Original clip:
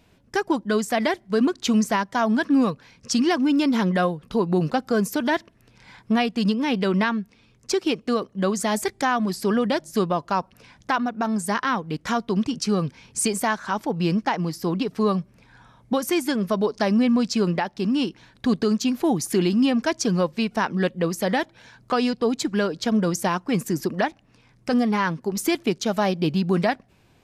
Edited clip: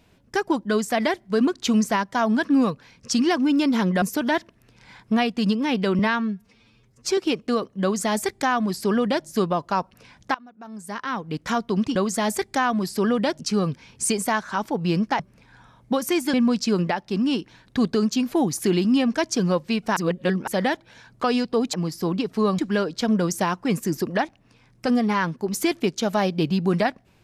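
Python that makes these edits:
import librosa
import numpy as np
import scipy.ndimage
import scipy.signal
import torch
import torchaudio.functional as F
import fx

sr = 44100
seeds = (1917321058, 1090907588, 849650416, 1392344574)

y = fx.edit(x, sr, fx.cut(start_s=4.02, length_s=0.99),
    fx.stretch_span(start_s=6.98, length_s=0.79, factor=1.5),
    fx.duplicate(start_s=8.42, length_s=1.44, to_s=12.55),
    fx.fade_in_from(start_s=10.94, length_s=1.03, curve='qua', floor_db=-22.5),
    fx.move(start_s=14.35, length_s=0.85, to_s=22.42),
    fx.cut(start_s=16.34, length_s=0.68),
    fx.reverse_span(start_s=20.65, length_s=0.51), tone=tone)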